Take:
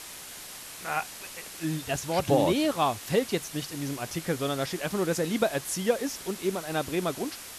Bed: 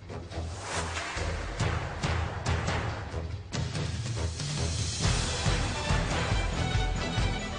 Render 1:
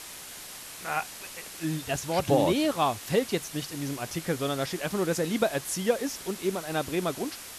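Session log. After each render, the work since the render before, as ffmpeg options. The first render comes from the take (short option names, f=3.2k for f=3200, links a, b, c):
-af anull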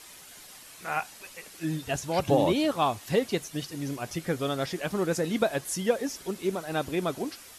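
-af "afftdn=nr=8:nf=-43"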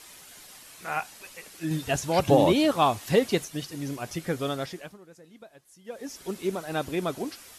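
-filter_complex "[0:a]asplit=5[a][b][c][d][e];[a]atrim=end=1.712[f];[b]atrim=start=1.708:end=3.452,asetpts=PTS-STARTPTS,volume=3.5dB[g];[c]atrim=start=3.448:end=4.98,asetpts=PTS-STARTPTS,afade=t=out:st=1.052:d=0.48:silence=0.0668344[h];[d]atrim=start=4.98:end=5.84,asetpts=PTS-STARTPTS,volume=-23.5dB[i];[e]atrim=start=5.84,asetpts=PTS-STARTPTS,afade=t=in:d=0.48:silence=0.0668344[j];[f][g]acrossfade=d=0.004:c1=hsin:c2=hsin[k];[h][i][j]concat=n=3:v=0:a=1[l];[k][l]acrossfade=d=0.004:c1=hsin:c2=hsin"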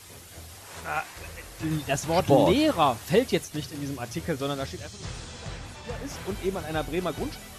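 -filter_complex "[1:a]volume=-10.5dB[a];[0:a][a]amix=inputs=2:normalize=0"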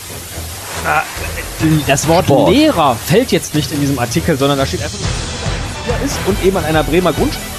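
-filter_complex "[0:a]asplit=2[a][b];[b]acompressor=threshold=-29dB:ratio=6,volume=2dB[c];[a][c]amix=inputs=2:normalize=0,alimiter=level_in=12dB:limit=-1dB:release=50:level=0:latency=1"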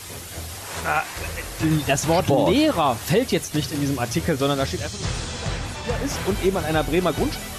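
-af "volume=-8.5dB"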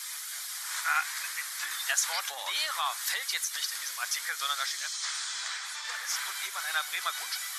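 -af "highpass=f=1.3k:w=0.5412,highpass=f=1.3k:w=1.3066,equalizer=f=2.7k:w=5.1:g=-11.5"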